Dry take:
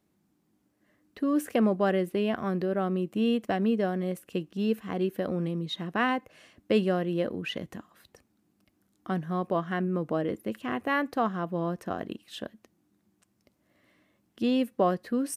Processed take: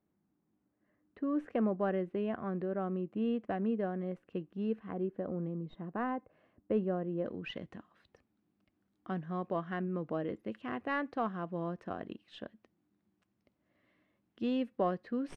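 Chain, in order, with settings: tracing distortion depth 0.035 ms; low-pass 1.8 kHz 12 dB/octave, from 4.92 s 1.1 kHz, from 7.26 s 3.3 kHz; trim -7 dB

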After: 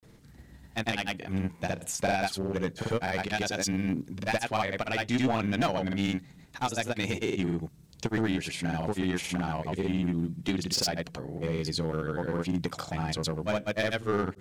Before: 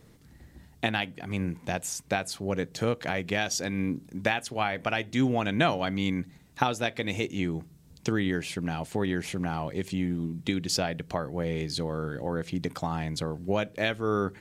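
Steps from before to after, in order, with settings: overload inside the chain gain 22.5 dB; granulator, pitch spread up and down by 0 st; trim +2 dB

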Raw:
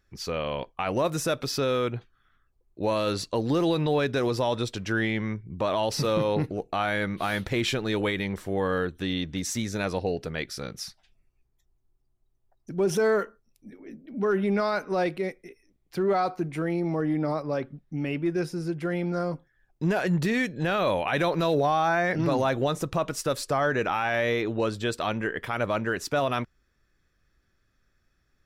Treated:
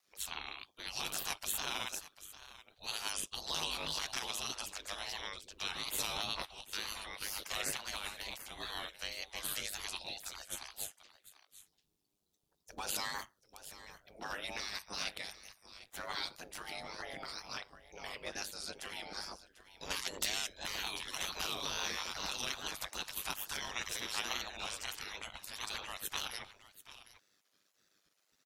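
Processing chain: resonant high shelf 2.7 kHz +8 dB, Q 1.5; delay 745 ms -15.5 dB; spectral gate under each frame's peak -20 dB weak; wow and flutter 92 cents; ring modulator 50 Hz; trim +2 dB

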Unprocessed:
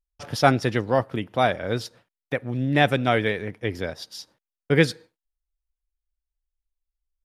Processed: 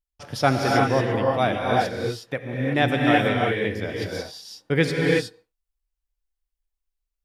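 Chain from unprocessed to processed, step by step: gated-style reverb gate 390 ms rising, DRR -2 dB; trim -2.5 dB

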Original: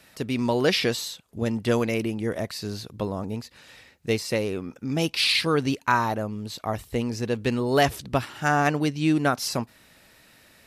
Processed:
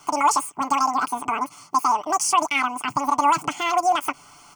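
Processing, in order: FFT filter 110 Hz 0 dB, 380 Hz +9 dB, 2.3 kHz -1 dB, 4.5 kHz +4 dB; in parallel at -1 dB: compression, threshold -25 dBFS, peak gain reduction 14.5 dB; on the sum: peak limiter -9 dBFS, peak gain reduction 7.5 dB; reverse; upward compressor, threshold -40 dBFS; reverse; static phaser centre 1.1 kHz, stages 8; doubling 16 ms -7 dB; speed mistake 33 rpm record played at 78 rpm

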